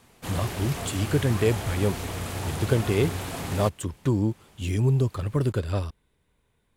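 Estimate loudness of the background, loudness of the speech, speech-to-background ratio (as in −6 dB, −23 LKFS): −33.0 LKFS, −27.0 LKFS, 6.0 dB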